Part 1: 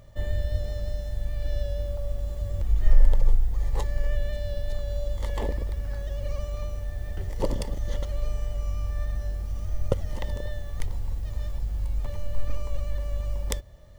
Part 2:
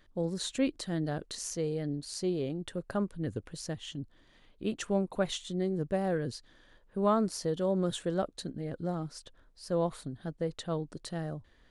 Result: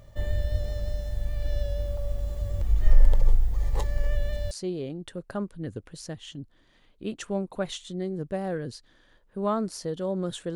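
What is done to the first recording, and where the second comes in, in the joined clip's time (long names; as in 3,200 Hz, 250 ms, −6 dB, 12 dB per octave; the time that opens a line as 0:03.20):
part 1
0:04.51: continue with part 2 from 0:02.11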